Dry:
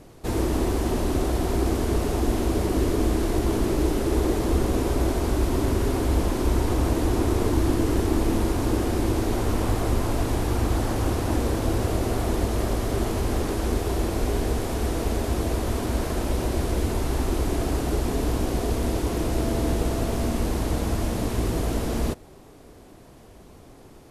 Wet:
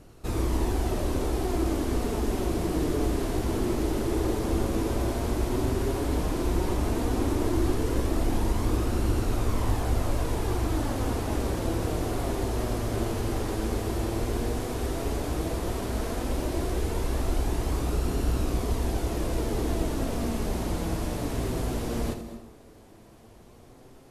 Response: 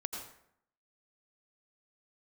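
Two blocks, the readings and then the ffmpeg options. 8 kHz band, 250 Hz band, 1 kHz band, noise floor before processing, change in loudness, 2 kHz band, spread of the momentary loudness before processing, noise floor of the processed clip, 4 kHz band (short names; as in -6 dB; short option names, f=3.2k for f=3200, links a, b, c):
-4.0 dB, -4.0 dB, -3.5 dB, -48 dBFS, -4.0 dB, -3.5 dB, 3 LU, -51 dBFS, -3.5 dB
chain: -filter_complex "[0:a]flanger=delay=0.7:depth=8.4:regen=64:speed=0.11:shape=sinusoidal,asplit=2[a][b];[1:a]atrim=start_sample=2205,asetrate=35721,aresample=44100,adelay=83[c];[b][c]afir=irnorm=-1:irlink=0,volume=-10dB[d];[a][d]amix=inputs=2:normalize=0"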